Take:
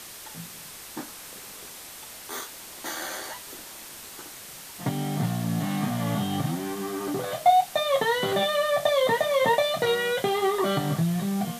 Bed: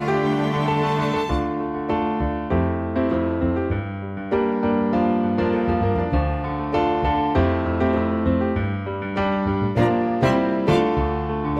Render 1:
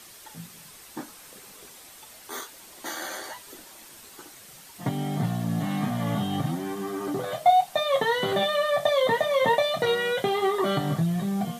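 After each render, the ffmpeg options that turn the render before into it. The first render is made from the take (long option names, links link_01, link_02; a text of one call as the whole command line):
ffmpeg -i in.wav -af "afftdn=noise_reduction=7:noise_floor=-43" out.wav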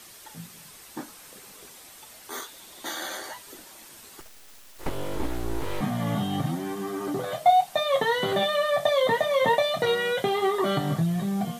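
ffmpeg -i in.wav -filter_complex "[0:a]asettb=1/sr,asplit=3[link_01][link_02][link_03];[link_01]atrim=end=2.444[link_04];[link_02]atrim=start=2.44:end=3.17,asetpts=PTS-STARTPTS,afade=type=in:duration=0.004:curve=qsin,afade=type=out:start_time=0.726:duration=0.004:curve=qsin,equalizer=frequency=3600:width=7.5:gain=8.5[link_05];[link_03]atrim=start=3.166[link_06];[link_04][link_05]acrossfade=duration=0.004:curve1=hsin:curve2=qsin[link_07];[link_07][link_06]acrossfade=duration=0.004:curve1=qsin:curve2=hsin,asettb=1/sr,asplit=3[link_08][link_09][link_10];[link_08]atrim=end=4.204[link_11];[link_09]atrim=start=4.2:end=5.81,asetpts=PTS-STARTPTS,afade=type=in:duration=0.004:curve=qsin,afade=type=out:start_time=1.606:duration=0.004:curve=qsin,aeval=exprs='abs(val(0))':channel_layout=same[link_12];[link_10]atrim=start=5.806[link_13];[link_11][link_12]acrossfade=duration=0.004:curve1=hsin:curve2=qsin[link_14];[link_14][link_13]acrossfade=duration=0.004:curve1=qsin:curve2=hsin" out.wav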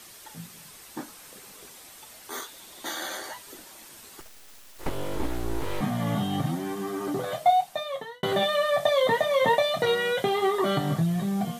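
ffmpeg -i in.wav -filter_complex "[0:a]asplit=2[link_01][link_02];[link_01]atrim=end=8.23,asetpts=PTS-STARTPTS,afade=type=out:start_time=7.33:duration=0.9[link_03];[link_02]atrim=start=8.23,asetpts=PTS-STARTPTS,afade=type=in:duration=0.004:curve=hsin[link_04];[link_03][link_04]concat=n=2:v=0:a=1" out.wav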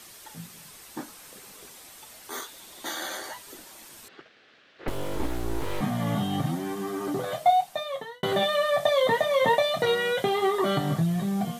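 ffmpeg -i in.wav -filter_complex "[0:a]asettb=1/sr,asplit=3[link_01][link_02][link_03];[link_01]atrim=end=4.084[link_04];[link_02]atrim=start=4.08:end=4.88,asetpts=PTS-STARTPTS,afade=type=in:duration=0.004:curve=qsin,afade=type=out:start_time=0.796:duration=0.004:curve=qsin,highpass=170,equalizer=frequency=470:width_type=q:width=4:gain=3,equalizer=frequency=940:width_type=q:width=4:gain=-9,equalizer=frequency=1600:width_type=q:width=4:gain=5,lowpass=frequency=3700:width=0.5412,lowpass=frequency=3700:width=1.3066[link_05];[link_03]atrim=start=4.876[link_06];[link_04][link_05]acrossfade=duration=0.004:curve1=hsin:curve2=qsin[link_07];[link_07][link_06]acrossfade=duration=0.004:curve1=qsin:curve2=hsin" out.wav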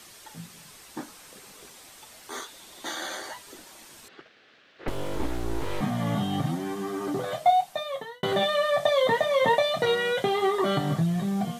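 ffmpeg -i in.wav -filter_complex "[0:a]acrossover=split=9500[link_01][link_02];[link_02]acompressor=threshold=-56dB:ratio=4:attack=1:release=60[link_03];[link_01][link_03]amix=inputs=2:normalize=0" out.wav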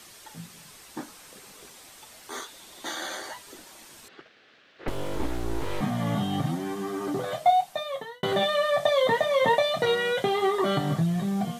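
ffmpeg -i in.wav -af anull out.wav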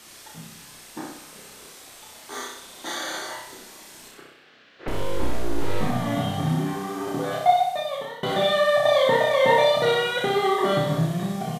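ffmpeg -i in.wav -filter_complex "[0:a]asplit=2[link_01][link_02];[link_02]adelay=32,volume=-2.5dB[link_03];[link_01][link_03]amix=inputs=2:normalize=0,aecho=1:1:63|126|189|252|315|378|441:0.596|0.316|0.167|0.0887|0.047|0.0249|0.0132" out.wav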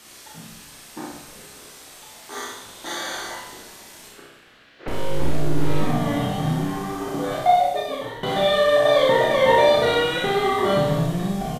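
ffmpeg -i in.wav -filter_complex "[0:a]asplit=2[link_01][link_02];[link_02]adelay=46,volume=-5dB[link_03];[link_01][link_03]amix=inputs=2:normalize=0,asplit=2[link_04][link_05];[link_05]asplit=6[link_06][link_07][link_08][link_09][link_10][link_11];[link_06]adelay=141,afreqshift=-150,volume=-14.5dB[link_12];[link_07]adelay=282,afreqshift=-300,volume=-19.5dB[link_13];[link_08]adelay=423,afreqshift=-450,volume=-24.6dB[link_14];[link_09]adelay=564,afreqshift=-600,volume=-29.6dB[link_15];[link_10]adelay=705,afreqshift=-750,volume=-34.6dB[link_16];[link_11]adelay=846,afreqshift=-900,volume=-39.7dB[link_17];[link_12][link_13][link_14][link_15][link_16][link_17]amix=inputs=6:normalize=0[link_18];[link_04][link_18]amix=inputs=2:normalize=0" out.wav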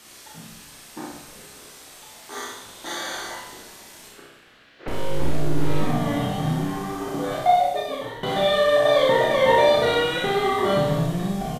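ffmpeg -i in.wav -af "volume=-1dB" out.wav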